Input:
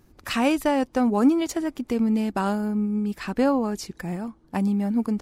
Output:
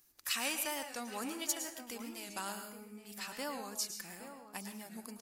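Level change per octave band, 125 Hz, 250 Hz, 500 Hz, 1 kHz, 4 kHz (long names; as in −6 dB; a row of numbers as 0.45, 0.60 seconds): −26.0, −24.5, −19.5, −15.0, −3.5 decibels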